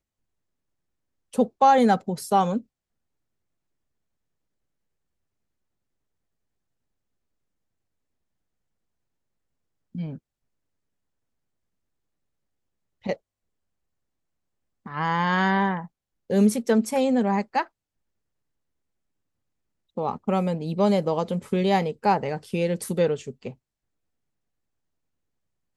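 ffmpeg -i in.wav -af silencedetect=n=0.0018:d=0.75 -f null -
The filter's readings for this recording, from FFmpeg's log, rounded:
silence_start: 0.00
silence_end: 1.33 | silence_duration: 1.33
silence_start: 2.64
silence_end: 9.95 | silence_duration: 7.31
silence_start: 10.18
silence_end: 13.02 | silence_duration: 2.84
silence_start: 13.18
silence_end: 14.86 | silence_duration: 1.68
silence_start: 17.68
silence_end: 19.97 | silence_duration: 2.29
silence_start: 23.55
silence_end: 25.76 | silence_duration: 2.21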